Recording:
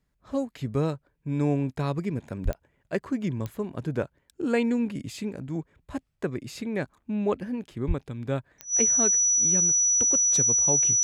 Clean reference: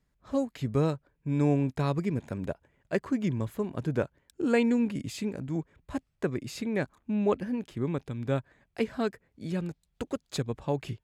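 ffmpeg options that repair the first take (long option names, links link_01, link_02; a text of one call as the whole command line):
ffmpeg -i in.wav -filter_complex "[0:a]adeclick=threshold=4,bandreject=frequency=5900:width=30,asplit=3[link_01][link_02][link_03];[link_01]afade=type=out:start_time=2.44:duration=0.02[link_04];[link_02]highpass=frequency=140:width=0.5412,highpass=frequency=140:width=1.3066,afade=type=in:start_time=2.44:duration=0.02,afade=type=out:start_time=2.56:duration=0.02[link_05];[link_03]afade=type=in:start_time=2.56:duration=0.02[link_06];[link_04][link_05][link_06]amix=inputs=3:normalize=0,asplit=3[link_07][link_08][link_09];[link_07]afade=type=out:start_time=7.87:duration=0.02[link_10];[link_08]highpass=frequency=140:width=0.5412,highpass=frequency=140:width=1.3066,afade=type=in:start_time=7.87:duration=0.02,afade=type=out:start_time=7.99:duration=0.02[link_11];[link_09]afade=type=in:start_time=7.99:duration=0.02[link_12];[link_10][link_11][link_12]amix=inputs=3:normalize=0" out.wav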